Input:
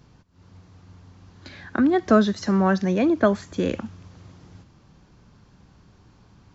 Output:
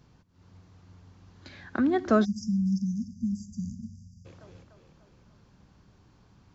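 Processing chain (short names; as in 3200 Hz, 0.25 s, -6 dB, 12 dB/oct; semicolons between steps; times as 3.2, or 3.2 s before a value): split-band echo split 380 Hz, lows 83 ms, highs 0.295 s, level -14.5 dB; spectral delete 2.25–4.26, 240–4700 Hz; gain -5.5 dB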